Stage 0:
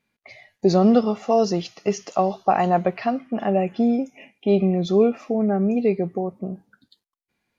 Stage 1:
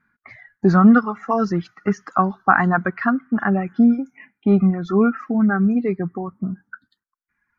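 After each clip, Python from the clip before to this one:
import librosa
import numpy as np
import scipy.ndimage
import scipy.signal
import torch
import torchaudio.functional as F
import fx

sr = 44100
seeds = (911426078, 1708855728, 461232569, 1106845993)

y = fx.dereverb_blind(x, sr, rt60_s=1.5)
y = fx.curve_eq(y, sr, hz=(260.0, 580.0, 1500.0, 2700.0), db=(0, -16, 14, -17))
y = y * librosa.db_to_amplitude(7.0)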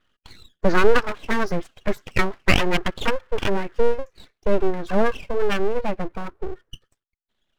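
y = np.abs(x)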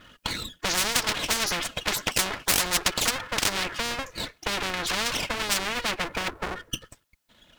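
y = fx.notch_comb(x, sr, f0_hz=390.0)
y = fx.spectral_comp(y, sr, ratio=10.0)
y = y * librosa.db_to_amplitude(2.0)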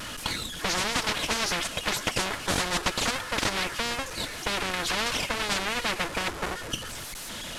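y = fx.delta_mod(x, sr, bps=64000, step_db=-31.0)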